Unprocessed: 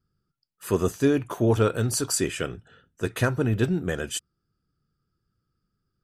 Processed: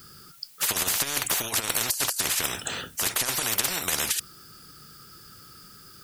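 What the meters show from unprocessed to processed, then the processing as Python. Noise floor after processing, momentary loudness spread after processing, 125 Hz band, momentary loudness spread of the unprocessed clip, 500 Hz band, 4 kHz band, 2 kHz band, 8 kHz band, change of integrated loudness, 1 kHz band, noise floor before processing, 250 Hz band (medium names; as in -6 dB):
-50 dBFS, 5 LU, -16.5 dB, 11 LU, -12.5 dB, +9.0 dB, +3.0 dB, +7.5 dB, +0.5 dB, +1.0 dB, -79 dBFS, -15.0 dB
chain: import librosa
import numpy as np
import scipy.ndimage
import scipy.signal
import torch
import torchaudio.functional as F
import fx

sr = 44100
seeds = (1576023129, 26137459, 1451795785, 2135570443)

y = fx.tilt_eq(x, sr, slope=3.5)
y = fx.over_compress(y, sr, threshold_db=-29.0, ratio=-0.5)
y = fx.spectral_comp(y, sr, ratio=10.0)
y = y * 10.0 ** (4.0 / 20.0)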